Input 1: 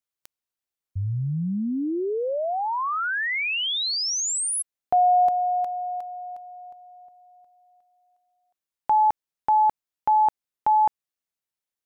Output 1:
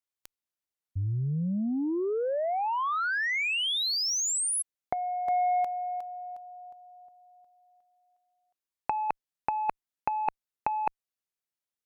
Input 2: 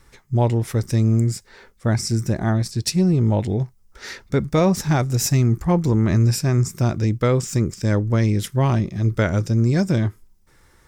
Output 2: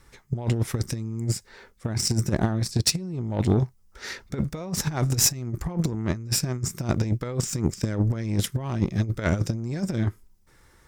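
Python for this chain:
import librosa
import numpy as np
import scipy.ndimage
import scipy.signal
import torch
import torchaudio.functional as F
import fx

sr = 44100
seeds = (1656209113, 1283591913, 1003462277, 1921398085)

y = fx.over_compress(x, sr, threshold_db=-21.0, ratio=-0.5)
y = fx.cheby_harmonics(y, sr, harmonics=(7,), levels_db=(-23,), full_scale_db=-6.0)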